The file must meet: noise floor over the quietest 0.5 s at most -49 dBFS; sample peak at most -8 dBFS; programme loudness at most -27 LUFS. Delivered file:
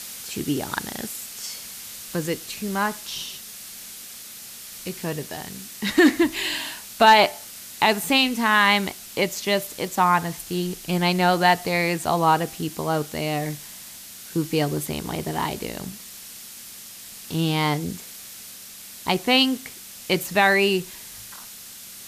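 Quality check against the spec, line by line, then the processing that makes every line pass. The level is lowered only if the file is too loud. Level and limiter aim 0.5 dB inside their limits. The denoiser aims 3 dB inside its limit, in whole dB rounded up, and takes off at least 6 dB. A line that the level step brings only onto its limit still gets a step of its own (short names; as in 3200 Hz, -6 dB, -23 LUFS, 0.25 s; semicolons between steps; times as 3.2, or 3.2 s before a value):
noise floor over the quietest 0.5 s -41 dBFS: fail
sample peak -5.0 dBFS: fail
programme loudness -22.5 LUFS: fail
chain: denoiser 6 dB, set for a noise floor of -41 dBFS; gain -5 dB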